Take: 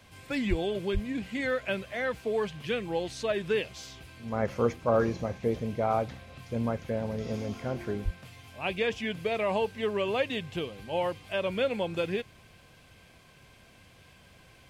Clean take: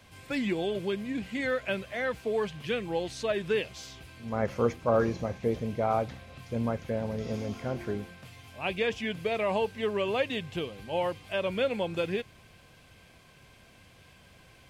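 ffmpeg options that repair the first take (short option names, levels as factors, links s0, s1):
-filter_complex "[0:a]asplit=3[s0][s1][s2];[s0]afade=t=out:st=0.49:d=0.02[s3];[s1]highpass=f=140:w=0.5412,highpass=f=140:w=1.3066,afade=t=in:st=0.49:d=0.02,afade=t=out:st=0.61:d=0.02[s4];[s2]afade=t=in:st=0.61:d=0.02[s5];[s3][s4][s5]amix=inputs=3:normalize=0,asplit=3[s6][s7][s8];[s6]afade=t=out:st=0.93:d=0.02[s9];[s7]highpass=f=140:w=0.5412,highpass=f=140:w=1.3066,afade=t=in:st=0.93:d=0.02,afade=t=out:st=1.05:d=0.02[s10];[s8]afade=t=in:st=1.05:d=0.02[s11];[s9][s10][s11]amix=inputs=3:normalize=0,asplit=3[s12][s13][s14];[s12]afade=t=out:st=8.04:d=0.02[s15];[s13]highpass=f=140:w=0.5412,highpass=f=140:w=1.3066,afade=t=in:st=8.04:d=0.02,afade=t=out:st=8.16:d=0.02[s16];[s14]afade=t=in:st=8.16:d=0.02[s17];[s15][s16][s17]amix=inputs=3:normalize=0"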